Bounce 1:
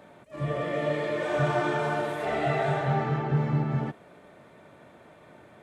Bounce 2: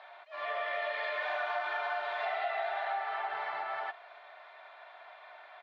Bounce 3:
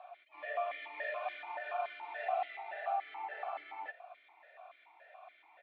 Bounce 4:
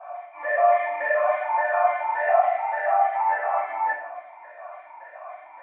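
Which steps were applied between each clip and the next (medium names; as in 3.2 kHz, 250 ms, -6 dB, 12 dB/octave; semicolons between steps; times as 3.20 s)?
elliptic band-pass 730–4300 Hz, stop band 50 dB; comb 2.9 ms, depth 40%; compression 6:1, threshold -36 dBFS, peak gain reduction 11.5 dB; trim +4.5 dB
stepped vowel filter 7 Hz; trim +5.5 dB
cabinet simulation 350–2000 Hz, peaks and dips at 430 Hz -4 dB, 610 Hz +4 dB, 1 kHz +7 dB; reverberation RT60 0.65 s, pre-delay 3 ms, DRR -12 dB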